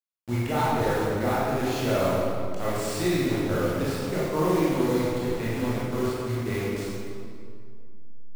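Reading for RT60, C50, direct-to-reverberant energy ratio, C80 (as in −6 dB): 2.2 s, −4.0 dB, −9.0 dB, −1.5 dB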